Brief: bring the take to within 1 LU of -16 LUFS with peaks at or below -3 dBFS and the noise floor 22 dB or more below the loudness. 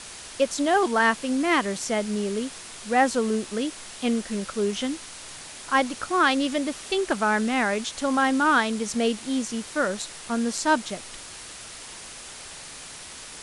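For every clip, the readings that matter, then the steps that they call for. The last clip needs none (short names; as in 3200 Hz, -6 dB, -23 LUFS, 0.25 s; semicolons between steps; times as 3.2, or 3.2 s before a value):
noise floor -41 dBFS; noise floor target -47 dBFS; loudness -24.5 LUFS; peak -9.0 dBFS; loudness target -16.0 LUFS
-> denoiser 6 dB, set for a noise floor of -41 dBFS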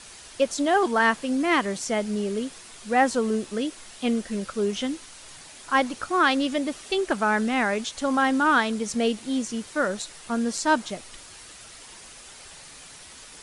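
noise floor -46 dBFS; noise floor target -47 dBFS
-> denoiser 6 dB, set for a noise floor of -46 dBFS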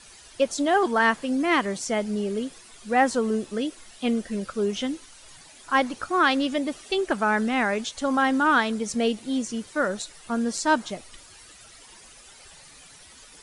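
noise floor -50 dBFS; loudness -25.0 LUFS; peak -9.0 dBFS; loudness target -16.0 LUFS
-> gain +9 dB; limiter -3 dBFS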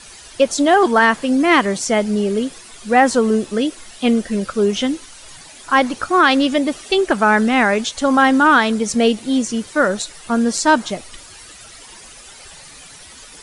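loudness -16.5 LUFS; peak -3.0 dBFS; noise floor -41 dBFS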